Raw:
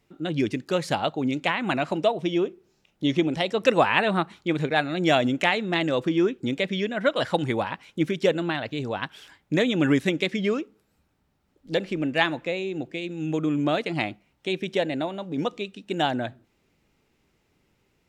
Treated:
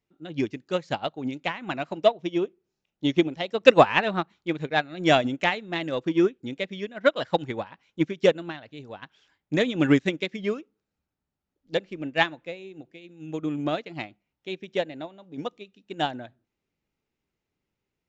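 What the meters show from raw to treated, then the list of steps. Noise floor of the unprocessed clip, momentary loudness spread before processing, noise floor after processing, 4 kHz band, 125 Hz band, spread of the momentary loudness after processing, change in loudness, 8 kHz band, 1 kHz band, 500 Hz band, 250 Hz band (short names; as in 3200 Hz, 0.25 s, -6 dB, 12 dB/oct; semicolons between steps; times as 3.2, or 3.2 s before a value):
-70 dBFS, 9 LU, -85 dBFS, -2.0 dB, -3.5 dB, 18 LU, -0.5 dB, n/a, -0.5 dB, 0.0 dB, -2.5 dB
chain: in parallel at -9 dB: soft clip -21 dBFS, distortion -10 dB; on the sum: downsampling 16000 Hz; upward expander 2.5:1, over -29 dBFS; gain +5.5 dB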